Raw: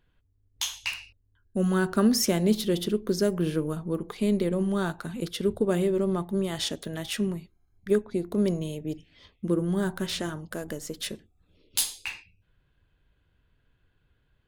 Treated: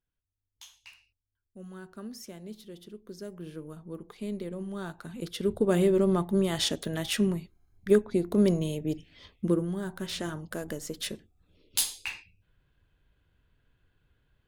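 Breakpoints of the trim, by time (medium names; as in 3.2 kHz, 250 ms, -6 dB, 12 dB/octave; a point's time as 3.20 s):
2.80 s -20 dB
3.99 s -10.5 dB
4.72 s -10.5 dB
5.84 s +2 dB
9.46 s +2 dB
9.80 s -8 dB
10.36 s -1 dB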